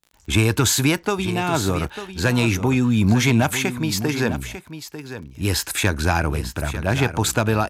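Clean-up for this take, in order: de-click; inverse comb 0.897 s -11.5 dB

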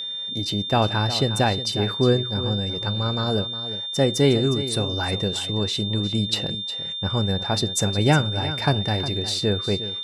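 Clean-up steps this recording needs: notch 3600 Hz, Q 30; inverse comb 0.36 s -12.5 dB

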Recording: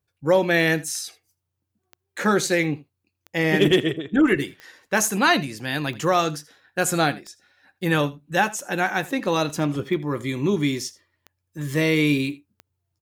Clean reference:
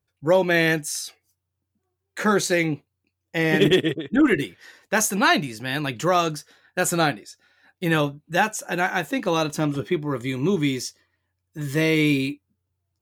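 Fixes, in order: de-click; inverse comb 81 ms -20 dB

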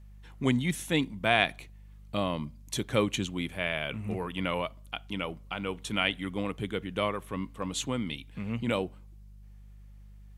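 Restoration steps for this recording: de-hum 50.1 Hz, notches 4

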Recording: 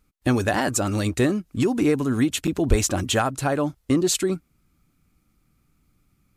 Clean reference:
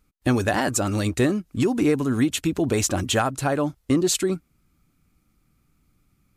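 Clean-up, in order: 2.69–2.81 HPF 140 Hz 24 dB/oct; interpolate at 2.47, 6 ms

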